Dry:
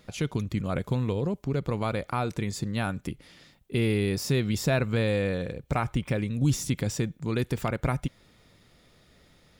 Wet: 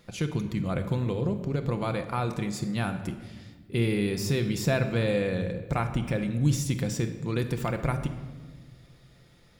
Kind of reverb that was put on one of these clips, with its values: simulated room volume 1300 m³, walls mixed, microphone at 0.8 m; trim -1.5 dB

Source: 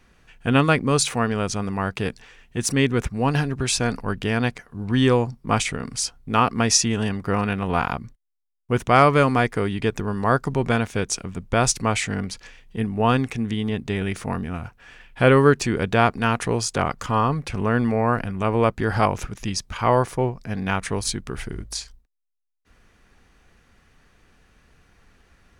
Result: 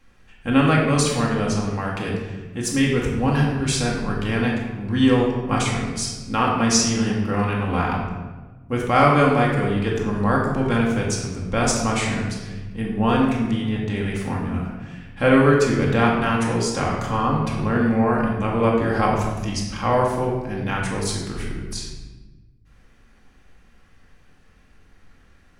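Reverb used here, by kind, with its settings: simulated room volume 870 m³, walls mixed, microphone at 2.2 m; trim -4.5 dB

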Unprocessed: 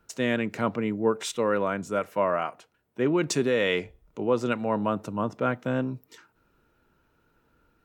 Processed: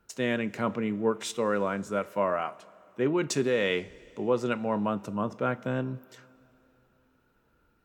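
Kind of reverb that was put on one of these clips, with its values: two-slope reverb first 0.25 s, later 3.2 s, from -18 dB, DRR 13.5 dB; trim -2.5 dB

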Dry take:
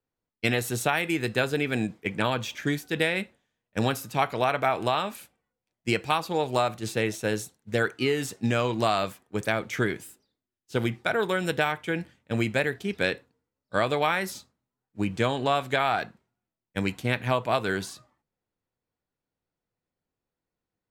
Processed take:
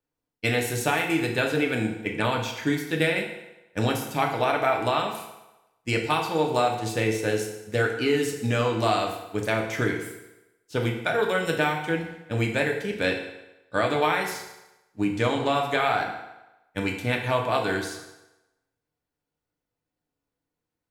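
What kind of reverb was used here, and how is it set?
FDN reverb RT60 1 s, low-frequency decay 0.8×, high-frequency decay 0.85×, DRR 1 dB; trim -1 dB

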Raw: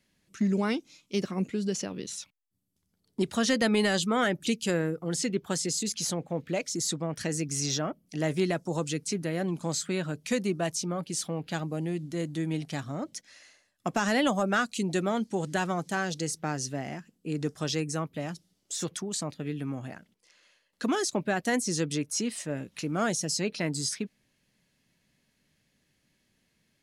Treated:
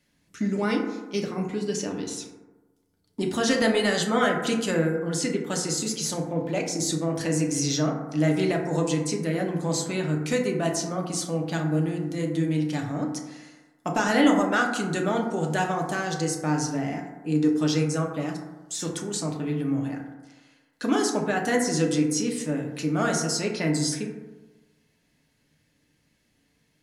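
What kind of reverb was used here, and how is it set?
FDN reverb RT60 1.2 s, low-frequency decay 0.95×, high-frequency decay 0.3×, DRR 0 dB; trim +1 dB

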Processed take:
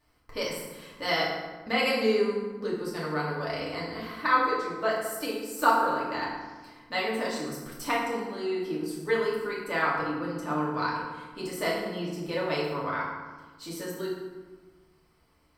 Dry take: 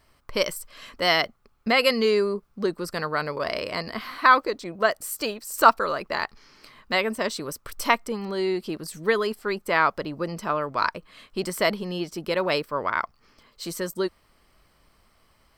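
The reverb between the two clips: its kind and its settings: FDN reverb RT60 1.3 s, low-frequency decay 1.45×, high-frequency decay 0.6×, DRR -6.5 dB; trim -12 dB

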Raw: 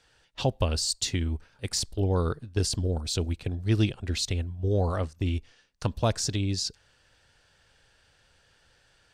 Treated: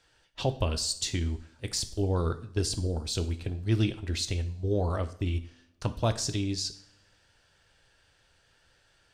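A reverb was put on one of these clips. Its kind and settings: two-slope reverb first 0.5 s, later 1.7 s, from -22 dB, DRR 8.5 dB; trim -2.5 dB

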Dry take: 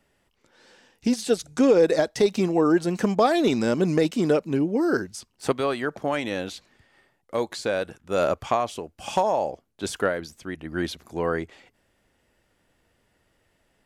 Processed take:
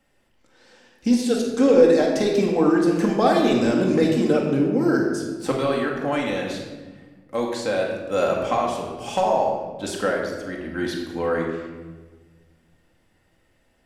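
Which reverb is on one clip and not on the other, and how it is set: simulated room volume 1100 m³, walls mixed, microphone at 2.1 m; trim -2 dB

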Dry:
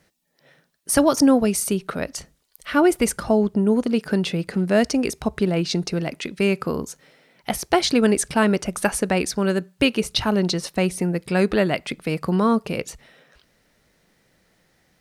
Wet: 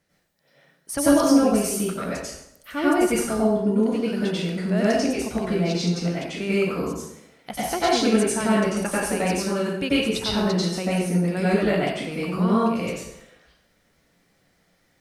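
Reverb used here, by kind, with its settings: plate-style reverb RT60 0.79 s, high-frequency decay 0.8×, pre-delay 80 ms, DRR -8.5 dB; trim -10.5 dB

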